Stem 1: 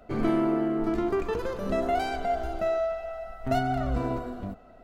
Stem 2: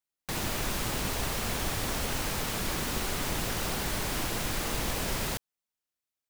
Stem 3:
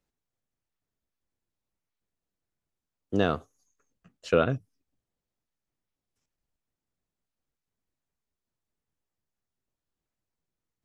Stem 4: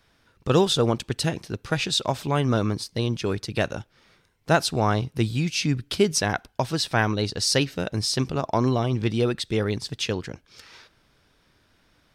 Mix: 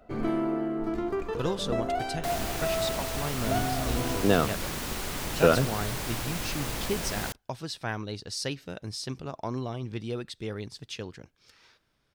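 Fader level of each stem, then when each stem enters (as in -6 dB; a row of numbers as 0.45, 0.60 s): -3.5, -2.0, +2.0, -11.0 dB; 0.00, 1.95, 1.10, 0.90 s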